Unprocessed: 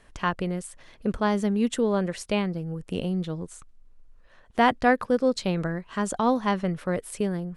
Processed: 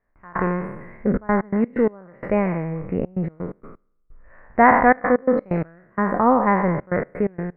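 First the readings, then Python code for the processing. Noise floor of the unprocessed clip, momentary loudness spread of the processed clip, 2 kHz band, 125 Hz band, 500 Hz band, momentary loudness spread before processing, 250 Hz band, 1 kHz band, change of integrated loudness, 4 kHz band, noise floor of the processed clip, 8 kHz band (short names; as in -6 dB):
-54 dBFS, 13 LU, +6.5 dB, +3.5 dB, +5.0 dB, 10 LU, +4.0 dB, +7.5 dB, +5.5 dB, under -20 dB, -65 dBFS, under -35 dB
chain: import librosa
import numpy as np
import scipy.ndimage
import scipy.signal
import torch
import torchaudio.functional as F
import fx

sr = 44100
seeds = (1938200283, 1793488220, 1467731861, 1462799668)

y = fx.spec_trails(x, sr, decay_s=1.03)
y = scipy.signal.sosfilt(scipy.signal.ellip(4, 1.0, 40, 2100.0, 'lowpass', fs=sr, output='sos'), y)
y = fx.step_gate(y, sr, bpm=128, pattern='...xxxxxxx.x.x.x', floor_db=-24.0, edge_ms=4.5)
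y = y * librosa.db_to_amplitude(5.5)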